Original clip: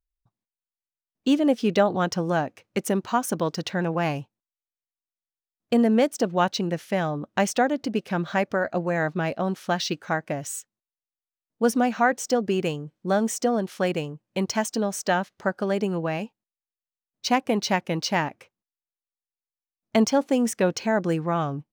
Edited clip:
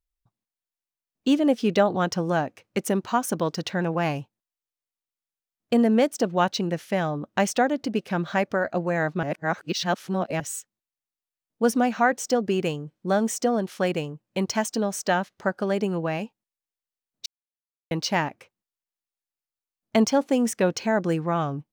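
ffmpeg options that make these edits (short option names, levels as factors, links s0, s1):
-filter_complex "[0:a]asplit=5[s0][s1][s2][s3][s4];[s0]atrim=end=9.232[s5];[s1]atrim=start=9.228:end=10.402,asetpts=PTS-STARTPTS,areverse[s6];[s2]atrim=start=10.398:end=17.26,asetpts=PTS-STARTPTS,afade=t=out:st=6.858:d=0.004:c=hsin[s7];[s3]atrim=start=17.26:end=17.91,asetpts=PTS-STARTPTS,volume=0[s8];[s4]atrim=start=17.91,asetpts=PTS-STARTPTS,afade=t=in:d=0.004:c=hsin[s9];[s5][s6]acrossfade=d=0.004:c1=hsin:c2=hsin[s10];[s7][s8][s9]concat=n=3:v=0:a=1[s11];[s10][s11]acrossfade=d=0.004:c1=hsin:c2=hsin"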